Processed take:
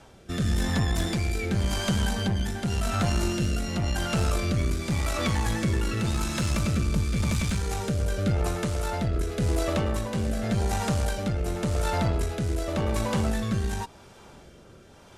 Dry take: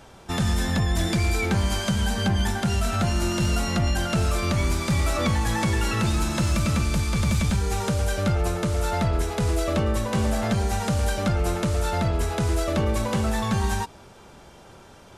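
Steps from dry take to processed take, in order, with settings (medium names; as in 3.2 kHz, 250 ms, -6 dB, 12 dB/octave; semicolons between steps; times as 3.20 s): Chebyshev shaper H 2 -13 dB, 5 -29 dB, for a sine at -15 dBFS; rotary cabinet horn 0.9 Hz; trim -1.5 dB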